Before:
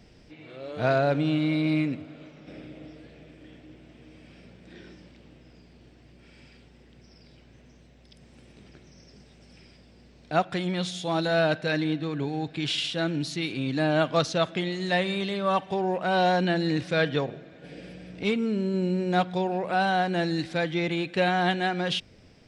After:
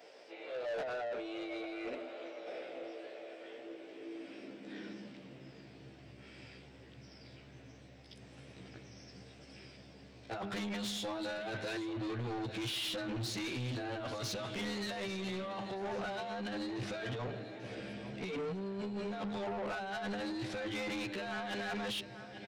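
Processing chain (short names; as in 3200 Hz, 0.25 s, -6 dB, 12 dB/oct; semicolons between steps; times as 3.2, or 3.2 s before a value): short-time reversal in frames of 31 ms; notches 50/100/150/200/250/300/350/400 Hz; negative-ratio compressor -34 dBFS, ratio -1; high shelf 5300 Hz -4.5 dB; feedback echo 0.84 s, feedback 53%, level -16 dB; high-pass sweep 530 Hz -> 99 Hz, 3.46–6.03; low shelf 170 Hz -11.5 dB; soft clip -36 dBFS, distortion -9 dB; gain +1 dB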